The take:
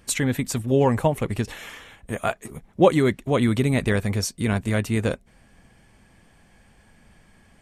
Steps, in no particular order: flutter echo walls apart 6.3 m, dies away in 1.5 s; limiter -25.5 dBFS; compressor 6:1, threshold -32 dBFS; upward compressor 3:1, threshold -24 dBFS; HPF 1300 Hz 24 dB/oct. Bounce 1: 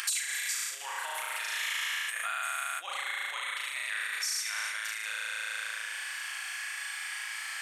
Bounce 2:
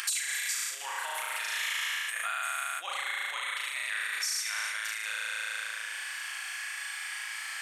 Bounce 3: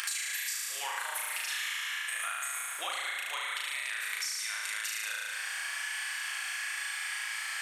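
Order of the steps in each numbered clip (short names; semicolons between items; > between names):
flutter echo > limiter > compressor > HPF > upward compressor; flutter echo > limiter > HPF > compressor > upward compressor; limiter > HPF > upward compressor > flutter echo > compressor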